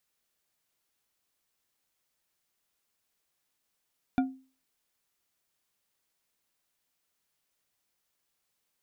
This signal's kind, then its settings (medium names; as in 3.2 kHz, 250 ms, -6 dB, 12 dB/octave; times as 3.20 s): glass hit bar, lowest mode 263 Hz, decay 0.37 s, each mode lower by 6.5 dB, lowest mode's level -19.5 dB